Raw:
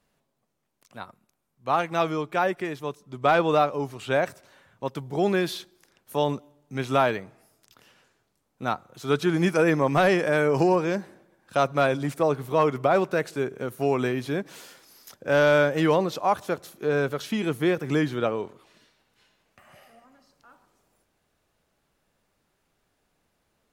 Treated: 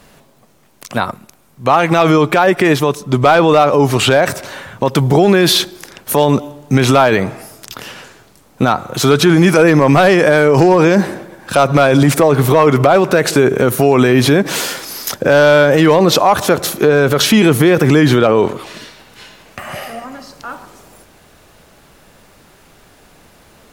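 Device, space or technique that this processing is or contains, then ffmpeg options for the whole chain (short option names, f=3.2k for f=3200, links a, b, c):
loud club master: -af "acompressor=threshold=-28dB:ratio=1.5,asoftclip=type=hard:threshold=-17.5dB,alimiter=level_in=27.5dB:limit=-1dB:release=50:level=0:latency=1,volume=-1dB"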